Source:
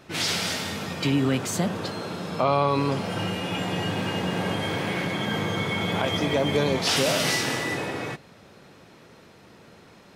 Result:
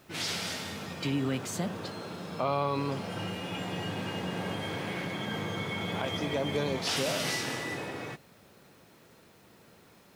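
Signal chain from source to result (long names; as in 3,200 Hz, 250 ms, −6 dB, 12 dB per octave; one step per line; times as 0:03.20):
bit-depth reduction 10 bits, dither triangular
level −7.5 dB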